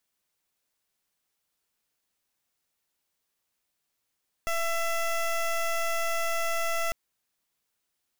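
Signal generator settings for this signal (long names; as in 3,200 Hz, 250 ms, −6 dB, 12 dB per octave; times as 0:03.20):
pulse wave 669 Hz, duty 16% −27.5 dBFS 2.45 s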